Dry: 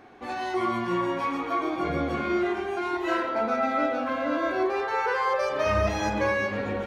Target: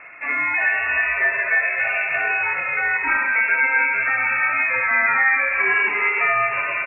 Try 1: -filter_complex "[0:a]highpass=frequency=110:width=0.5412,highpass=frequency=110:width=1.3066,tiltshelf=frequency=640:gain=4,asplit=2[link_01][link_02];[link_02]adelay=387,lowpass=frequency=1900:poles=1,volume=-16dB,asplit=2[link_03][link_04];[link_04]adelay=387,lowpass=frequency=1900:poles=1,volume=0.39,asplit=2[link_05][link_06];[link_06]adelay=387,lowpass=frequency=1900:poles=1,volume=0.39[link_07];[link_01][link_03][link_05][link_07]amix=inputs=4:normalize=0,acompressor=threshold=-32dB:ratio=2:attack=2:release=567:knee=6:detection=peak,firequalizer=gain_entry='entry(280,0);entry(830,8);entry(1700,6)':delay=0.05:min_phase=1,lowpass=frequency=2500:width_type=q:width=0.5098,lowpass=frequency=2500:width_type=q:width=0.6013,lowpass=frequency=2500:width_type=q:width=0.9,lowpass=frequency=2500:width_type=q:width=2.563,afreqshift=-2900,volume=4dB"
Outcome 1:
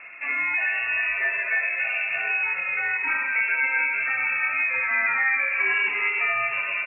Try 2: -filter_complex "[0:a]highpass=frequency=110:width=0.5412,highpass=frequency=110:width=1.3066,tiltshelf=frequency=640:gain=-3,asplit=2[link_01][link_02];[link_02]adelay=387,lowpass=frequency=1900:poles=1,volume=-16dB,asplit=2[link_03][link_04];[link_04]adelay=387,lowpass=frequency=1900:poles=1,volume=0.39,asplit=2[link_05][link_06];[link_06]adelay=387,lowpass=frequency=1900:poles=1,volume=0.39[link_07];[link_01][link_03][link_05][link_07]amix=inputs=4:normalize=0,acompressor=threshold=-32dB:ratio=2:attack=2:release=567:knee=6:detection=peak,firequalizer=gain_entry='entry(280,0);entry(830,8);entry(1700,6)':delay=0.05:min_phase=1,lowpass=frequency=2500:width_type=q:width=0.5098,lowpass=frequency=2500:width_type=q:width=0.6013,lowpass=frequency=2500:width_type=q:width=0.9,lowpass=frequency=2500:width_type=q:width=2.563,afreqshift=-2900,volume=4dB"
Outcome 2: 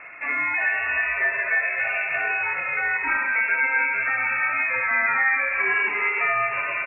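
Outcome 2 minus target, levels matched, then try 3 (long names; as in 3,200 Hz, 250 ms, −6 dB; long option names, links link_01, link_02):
downward compressor: peak gain reduction +3.5 dB
-filter_complex "[0:a]highpass=frequency=110:width=0.5412,highpass=frequency=110:width=1.3066,tiltshelf=frequency=640:gain=-3,asplit=2[link_01][link_02];[link_02]adelay=387,lowpass=frequency=1900:poles=1,volume=-16dB,asplit=2[link_03][link_04];[link_04]adelay=387,lowpass=frequency=1900:poles=1,volume=0.39,asplit=2[link_05][link_06];[link_06]adelay=387,lowpass=frequency=1900:poles=1,volume=0.39[link_07];[link_01][link_03][link_05][link_07]amix=inputs=4:normalize=0,acompressor=threshold=-25dB:ratio=2:attack=2:release=567:knee=6:detection=peak,firequalizer=gain_entry='entry(280,0);entry(830,8);entry(1700,6)':delay=0.05:min_phase=1,lowpass=frequency=2500:width_type=q:width=0.5098,lowpass=frequency=2500:width_type=q:width=0.6013,lowpass=frequency=2500:width_type=q:width=0.9,lowpass=frequency=2500:width_type=q:width=2.563,afreqshift=-2900,volume=4dB"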